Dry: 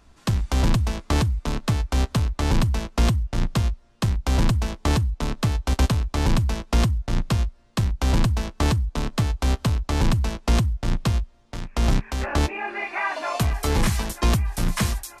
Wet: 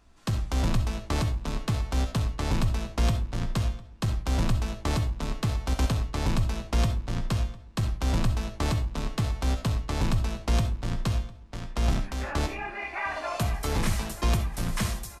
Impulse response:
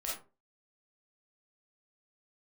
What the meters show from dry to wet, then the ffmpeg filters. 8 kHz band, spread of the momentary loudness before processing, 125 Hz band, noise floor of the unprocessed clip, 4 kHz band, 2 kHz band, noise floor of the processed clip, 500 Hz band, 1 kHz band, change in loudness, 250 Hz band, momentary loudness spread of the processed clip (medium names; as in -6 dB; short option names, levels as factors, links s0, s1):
-5.0 dB, 4 LU, -5.0 dB, -54 dBFS, -5.0 dB, -5.0 dB, -45 dBFS, -5.0 dB, -5.0 dB, -5.0 dB, -5.5 dB, 5 LU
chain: -filter_complex "[0:a]asplit=2[s0][s1];[s1]adelay=703,lowpass=f=4300:p=1,volume=0.0944,asplit=2[s2][s3];[s3]adelay=703,lowpass=f=4300:p=1,volume=0.27[s4];[s0][s2][s4]amix=inputs=3:normalize=0,asplit=2[s5][s6];[1:a]atrim=start_sample=2205,adelay=19[s7];[s6][s7]afir=irnorm=-1:irlink=0,volume=0.398[s8];[s5][s8]amix=inputs=2:normalize=0,volume=0.501"